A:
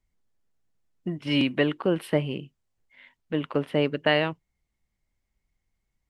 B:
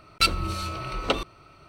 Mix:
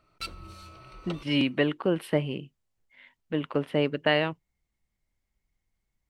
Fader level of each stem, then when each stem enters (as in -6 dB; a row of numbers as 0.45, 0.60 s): -1.5, -16.0 dB; 0.00, 0.00 s